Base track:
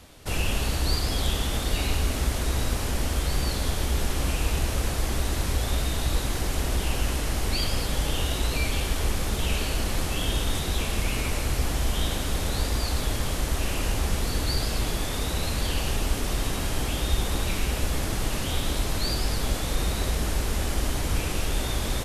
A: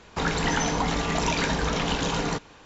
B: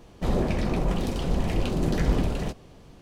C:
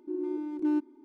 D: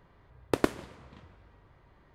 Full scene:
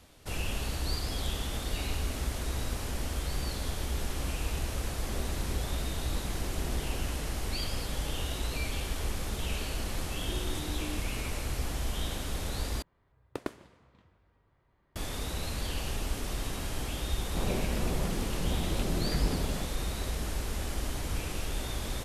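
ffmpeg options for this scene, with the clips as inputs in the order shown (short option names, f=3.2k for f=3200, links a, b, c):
-filter_complex "[2:a]asplit=2[a][b];[0:a]volume=-7.5dB[c];[3:a]acompressor=threshold=-32dB:ratio=6:attack=3.2:release=140:knee=1:detection=peak[d];[c]asplit=2[e][f];[e]atrim=end=12.824[g];[4:a]atrim=end=2.14,asetpts=PTS-STARTPTS,volume=-10.5dB[h];[f]atrim=start=14.956[i];[a]atrim=end=3.01,asetpts=PTS-STARTPTS,volume=-17dB,afade=t=in:d=0.004:c=hsin,afade=t=out:st=3.006:d=0.004:c=hsin,adelay=4790[j];[d]atrim=end=1.04,asetpts=PTS-STARTPTS,volume=-6.5dB,afade=t=in:d=0.004:c=hsin,afade=t=out:st=1.036:d=0.004:c=hsin,adelay=10190[k];[b]atrim=end=3.01,asetpts=PTS-STARTPTS,volume=-7.5dB,afade=t=in:d=0.004:c=hsin,afade=t=out:st=3.006:d=0.004:c=hsin,adelay=17140[l];[g][h]acrossfade=d=0.004:c1=hsin:c2=hsin[m];[m][i]acrossfade=d=0.004:c1=hsin:c2=hsin[n];[n][j][k][l]amix=inputs=4:normalize=0"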